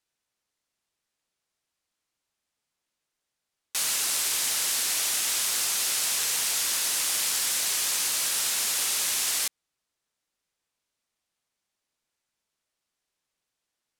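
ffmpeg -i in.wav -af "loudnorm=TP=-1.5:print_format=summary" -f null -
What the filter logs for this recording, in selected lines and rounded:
Input Integrated:    -24.0 LUFS
Input True Peak:     -12.8 dBTP
Input LRA:             8.1 LU
Input Threshold:     -34.0 LUFS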